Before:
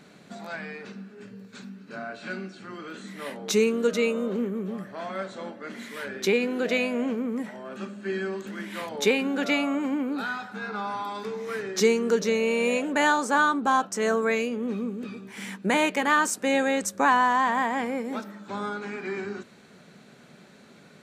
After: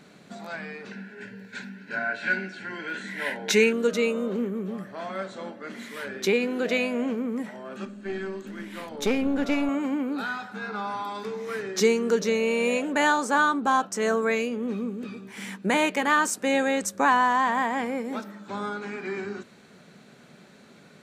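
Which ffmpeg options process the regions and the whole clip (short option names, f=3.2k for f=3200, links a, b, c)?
-filter_complex "[0:a]asettb=1/sr,asplit=3[a][b][c];[a]atrim=end=0.914[d];[b]atrim=start=0.91:end=3.73,asetpts=PTS-STARTPTS,afade=t=in:d=0.004:c=qsin,afade=t=out:st=2.816:d=0.004:c=qsin,asuperstop=centerf=1200:order=12:qfactor=3.9,equalizer=f=1.7k:t=o:w=1.5:g=13[e];[c]atrim=start=3.726[f];[d][e]acrossfade=d=0.004:c1=hsin:c2=qsin[g];[g][f]acrossfade=d=0.004:c1=qsin:c2=hsin,asettb=1/sr,asplit=3[h][i][j];[h]atrim=end=7.854[k];[i]atrim=start=7.85:end=9.69,asetpts=PTS-STARTPTS,afade=t=in:d=0.004:c=qsin,afade=t=out:st=1.836:d=0.004:c=qsin,equalizer=f=270:w=2.1:g=7,aeval=exprs='(tanh(7.08*val(0)+0.75)-tanh(0.75))/7.08':c=same[l];[j]atrim=start=9.686[m];[k][l]acrossfade=d=0.004:c1=hsin:c2=qsin[n];[n][m]acrossfade=d=0.004:c1=qsin:c2=hsin"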